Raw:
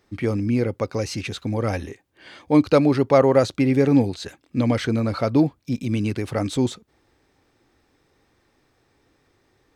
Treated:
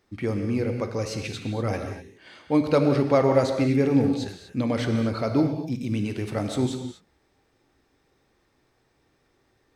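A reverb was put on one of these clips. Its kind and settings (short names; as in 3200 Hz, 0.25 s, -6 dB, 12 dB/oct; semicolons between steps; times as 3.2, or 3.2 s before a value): non-linear reverb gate 0.27 s flat, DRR 4.5 dB; gain -4.5 dB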